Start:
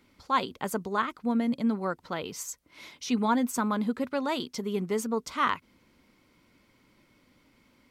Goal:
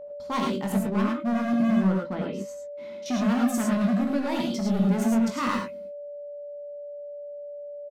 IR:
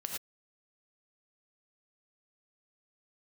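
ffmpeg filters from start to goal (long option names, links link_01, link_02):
-filter_complex "[0:a]asettb=1/sr,asplit=3[link_01][link_02][link_03];[link_01]atrim=end=0.724[link_04];[link_02]atrim=start=0.72:end=3.06,asetpts=PTS-STARTPTS,afade=type=in:duration=0.004:curve=qsin,afade=type=out:start_time=2.336:duration=0.004:curve=qsin,lowpass=frequency=1300:poles=1[link_05];[link_03]atrim=start=3.056[link_06];[link_04][link_05]acrossfade=duration=0.004:curve1=hsin:curve2=qsin[link_07];[link_07][link_06]acrossfade=duration=0.004:curve1=qsin:curve2=hsin,agate=range=-30dB:threshold=-56dB:ratio=16:detection=peak,equalizer=frequency=220:width_type=o:width=0.69:gain=14,volume=23.5dB,asoftclip=hard,volume=-23.5dB,aeval=exprs='val(0)+0.0141*sin(2*PI*580*n/s)':channel_layout=same,asplit=2[link_08][link_09];[link_09]adelay=21,volume=-7dB[link_10];[link_08][link_10]amix=inputs=2:normalize=0[link_11];[1:a]atrim=start_sample=2205[link_12];[link_11][link_12]afir=irnorm=-1:irlink=0"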